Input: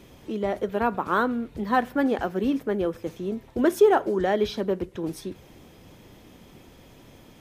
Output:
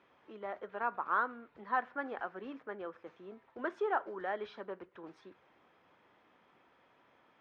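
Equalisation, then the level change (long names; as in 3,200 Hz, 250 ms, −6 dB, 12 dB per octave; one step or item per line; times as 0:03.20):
resonant band-pass 1,300 Hz, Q 1.5
high-frequency loss of the air 120 metres
−5.0 dB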